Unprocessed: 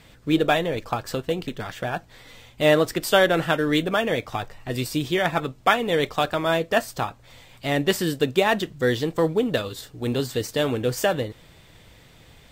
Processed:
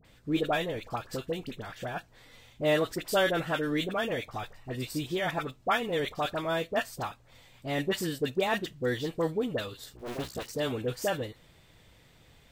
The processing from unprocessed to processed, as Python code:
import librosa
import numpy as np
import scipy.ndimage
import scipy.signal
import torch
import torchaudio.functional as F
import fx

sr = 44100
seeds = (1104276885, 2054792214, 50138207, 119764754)

y = fx.cycle_switch(x, sr, every=2, mode='muted', at=(9.92, 10.46))
y = fx.dispersion(y, sr, late='highs', ms=48.0, hz=1300.0)
y = F.gain(torch.from_numpy(y), -8.0).numpy()